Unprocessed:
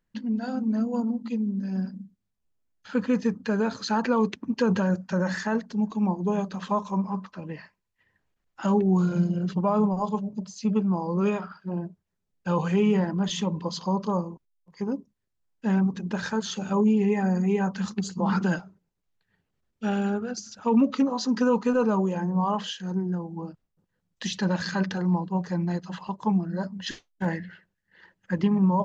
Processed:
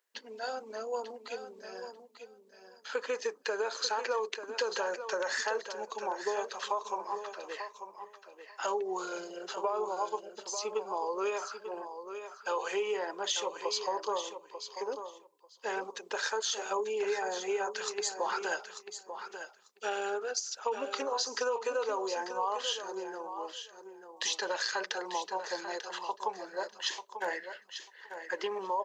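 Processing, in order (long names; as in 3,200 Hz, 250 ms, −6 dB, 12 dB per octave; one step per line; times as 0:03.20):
elliptic high-pass filter 410 Hz, stop band 80 dB
high-shelf EQ 3,700 Hz +9.5 dB
downward compressor, threshold −29 dBFS, peak gain reduction 9 dB
repeating echo 892 ms, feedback 15%, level −9.5 dB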